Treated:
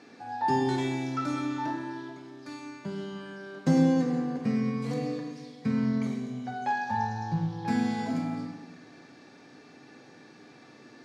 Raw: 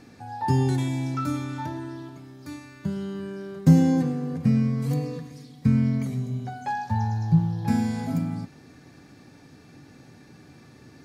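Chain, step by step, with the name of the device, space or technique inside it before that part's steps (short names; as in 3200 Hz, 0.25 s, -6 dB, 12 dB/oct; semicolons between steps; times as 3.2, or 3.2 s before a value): supermarket ceiling speaker (BPF 300–5600 Hz; reverb RT60 1.1 s, pre-delay 14 ms, DRR 3 dB)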